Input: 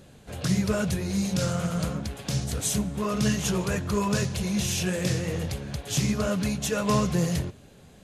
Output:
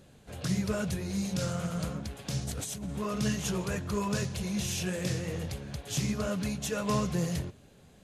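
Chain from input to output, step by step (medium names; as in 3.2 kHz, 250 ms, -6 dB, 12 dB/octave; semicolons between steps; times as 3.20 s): 2.47–2.98 s: compressor with a negative ratio -31 dBFS, ratio -1; trim -5.5 dB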